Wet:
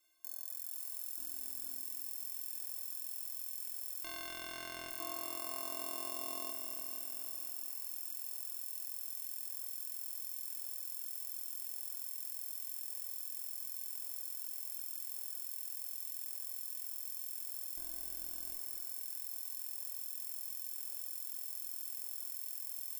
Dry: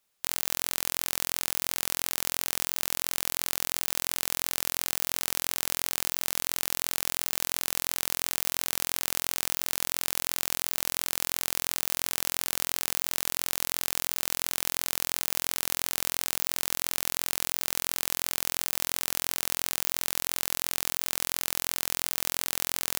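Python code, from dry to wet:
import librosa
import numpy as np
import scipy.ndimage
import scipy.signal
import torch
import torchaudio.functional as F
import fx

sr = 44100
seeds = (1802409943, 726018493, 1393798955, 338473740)

y = fx.hum_notches(x, sr, base_hz=50, count=5, at=(1.16, 1.83))
y = fx.lowpass(y, sr, hz=fx.line((4.03, 3500.0), (4.88, 1400.0)), slope=6, at=(4.03, 4.88), fade=0.02)
y = fx.spec_box(y, sr, start_s=4.99, length_s=1.52, low_hz=220.0, high_hz=1300.0, gain_db=-14)
y = fx.highpass(y, sr, hz=74.0, slope=6, at=(17.76, 18.54))
y = fx.tube_stage(y, sr, drive_db=20.0, bias=0.35)
y = fx.stiff_resonator(y, sr, f0_hz=320.0, decay_s=0.21, stiffness=0.03)
y = fx.echo_crushed(y, sr, ms=241, feedback_pct=80, bits=12, wet_db=-5.5)
y = F.gain(torch.from_numpy(y), 15.0).numpy()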